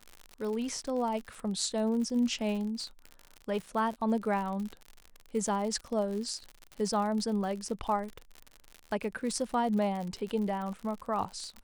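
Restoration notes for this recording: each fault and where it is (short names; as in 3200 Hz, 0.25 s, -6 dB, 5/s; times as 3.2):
crackle 74/s -36 dBFS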